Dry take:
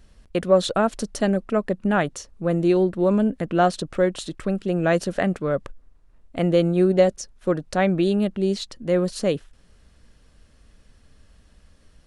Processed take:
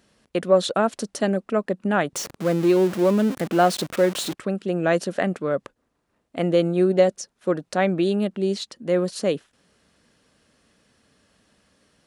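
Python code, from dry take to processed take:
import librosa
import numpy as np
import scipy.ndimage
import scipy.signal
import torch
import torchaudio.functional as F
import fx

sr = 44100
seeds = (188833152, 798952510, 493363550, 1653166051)

y = fx.zero_step(x, sr, step_db=-26.5, at=(2.13, 4.34))
y = scipy.signal.sosfilt(scipy.signal.butter(2, 180.0, 'highpass', fs=sr, output='sos'), y)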